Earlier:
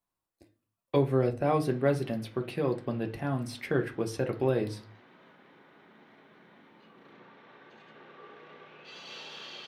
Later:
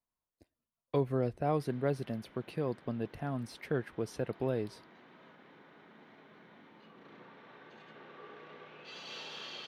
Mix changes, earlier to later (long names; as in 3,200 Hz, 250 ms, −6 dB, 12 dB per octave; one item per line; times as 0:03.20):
speech −3.5 dB
reverb: off